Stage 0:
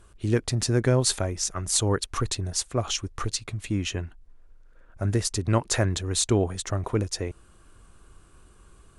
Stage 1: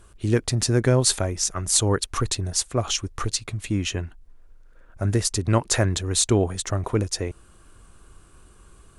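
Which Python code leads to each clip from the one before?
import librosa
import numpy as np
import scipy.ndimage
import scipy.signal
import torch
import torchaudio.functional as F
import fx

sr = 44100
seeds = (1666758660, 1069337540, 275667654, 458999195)

y = fx.high_shelf(x, sr, hz=8700.0, db=4.0)
y = y * 10.0 ** (2.5 / 20.0)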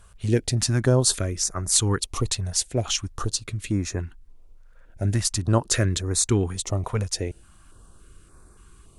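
y = fx.filter_held_notch(x, sr, hz=3.5, low_hz=320.0, high_hz=3000.0)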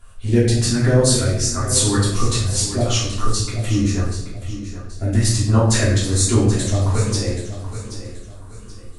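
y = fx.echo_feedback(x, sr, ms=779, feedback_pct=33, wet_db=-12.0)
y = fx.room_shoebox(y, sr, seeds[0], volume_m3=220.0, walls='mixed', distance_m=3.1)
y = y * 10.0 ** (-4.5 / 20.0)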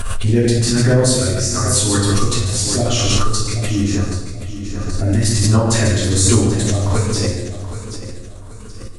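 y = x + 10.0 ** (-7.0 / 20.0) * np.pad(x, (int(141 * sr / 1000.0), 0))[:len(x)]
y = fx.pre_swell(y, sr, db_per_s=22.0)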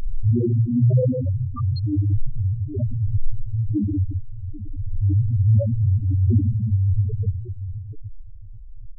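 y = fx.spec_topn(x, sr, count=2)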